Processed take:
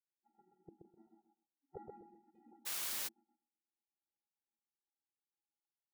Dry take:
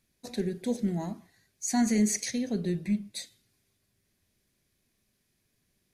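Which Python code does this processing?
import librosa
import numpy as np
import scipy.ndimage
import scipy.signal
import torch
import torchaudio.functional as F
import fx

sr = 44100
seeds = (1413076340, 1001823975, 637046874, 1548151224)

y = fx.vocoder(x, sr, bands=32, carrier='square', carrier_hz=276.0)
y = fx.env_lowpass_down(y, sr, base_hz=360.0, full_db=-27.5, at=(0.56, 1.77))
y = fx.transient(y, sr, attack_db=1, sustain_db=-4)
y = fx.spec_gate(y, sr, threshold_db=-20, keep='weak')
y = fx.ladder_lowpass(y, sr, hz=620.0, resonance_pct=45)
y = fx.echo_feedback(y, sr, ms=127, feedback_pct=22, wet_db=-3.5)
y = fx.tremolo_random(y, sr, seeds[0], hz=3.5, depth_pct=55)
y = fx.quant_dither(y, sr, seeds[1], bits=8, dither='triangular', at=(2.65, 3.07), fade=0.02)
y = fx.low_shelf(y, sr, hz=450.0, db=-11.5)
y = y * 10.0 ** (8.5 / 20.0)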